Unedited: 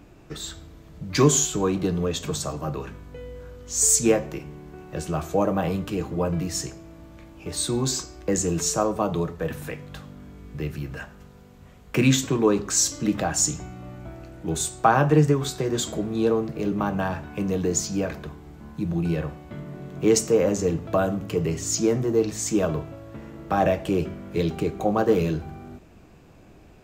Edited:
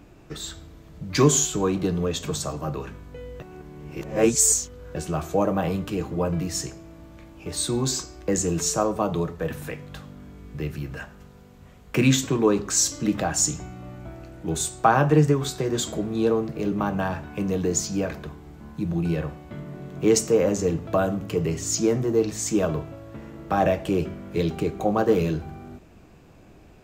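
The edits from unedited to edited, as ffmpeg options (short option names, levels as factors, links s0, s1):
-filter_complex "[0:a]asplit=3[s0][s1][s2];[s0]atrim=end=3.402[s3];[s1]atrim=start=3.398:end=4.952,asetpts=PTS-STARTPTS,areverse[s4];[s2]atrim=start=4.948[s5];[s3][s4]acrossfade=d=0.004:c1=hsin:c2=hsin[s6];[s6][s5]acrossfade=d=0.004:c1=hsin:c2=hsin"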